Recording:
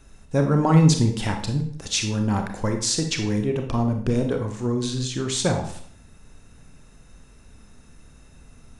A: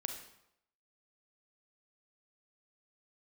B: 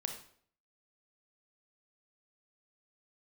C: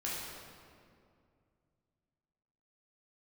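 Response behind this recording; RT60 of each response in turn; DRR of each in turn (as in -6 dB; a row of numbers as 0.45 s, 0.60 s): B; 0.80 s, 0.55 s, 2.3 s; 4.5 dB, 4.0 dB, -7.0 dB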